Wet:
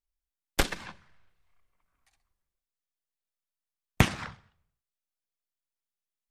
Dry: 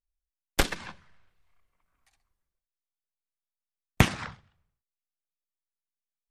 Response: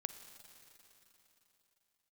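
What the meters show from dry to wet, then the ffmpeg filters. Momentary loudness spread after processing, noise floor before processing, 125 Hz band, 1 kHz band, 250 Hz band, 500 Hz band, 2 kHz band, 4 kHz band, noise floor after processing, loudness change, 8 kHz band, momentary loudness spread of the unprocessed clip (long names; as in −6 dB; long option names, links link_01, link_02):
16 LU, below −85 dBFS, −1.5 dB, −1.5 dB, −1.5 dB, −1.5 dB, −1.5 dB, −1.5 dB, below −85 dBFS, −1.5 dB, −1.5 dB, 16 LU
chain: -filter_complex "[0:a]asplit=2[link_01][link_02];[1:a]atrim=start_sample=2205,afade=type=out:start_time=0.28:duration=0.01,atrim=end_sample=12789[link_03];[link_02][link_03]afir=irnorm=-1:irlink=0,volume=-9.5dB[link_04];[link_01][link_04]amix=inputs=2:normalize=0,volume=-3.5dB"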